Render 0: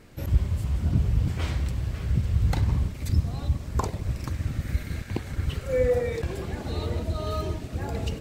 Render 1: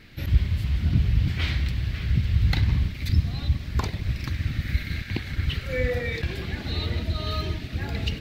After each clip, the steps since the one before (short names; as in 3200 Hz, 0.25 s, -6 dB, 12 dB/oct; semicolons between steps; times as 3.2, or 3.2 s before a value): ten-band EQ 500 Hz -7 dB, 1000 Hz -6 dB, 2000 Hz +7 dB, 4000 Hz +9 dB, 8000 Hz -11 dB; gain +2 dB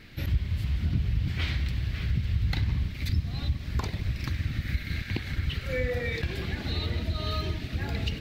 compressor 2:1, threshold -27 dBFS, peak gain reduction 8.5 dB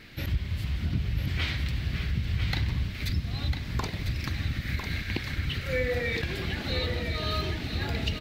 low shelf 200 Hz -5.5 dB; echo 1 s -7 dB; gain +2.5 dB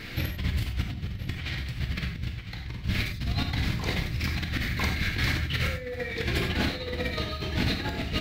negative-ratio compressor -34 dBFS, ratio -0.5; non-linear reverb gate 0.12 s flat, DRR 3 dB; gain +3.5 dB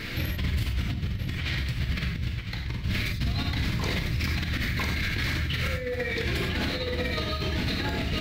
notch 760 Hz, Q 12; limiter -23.5 dBFS, peak gain reduction 9.5 dB; gain +4.5 dB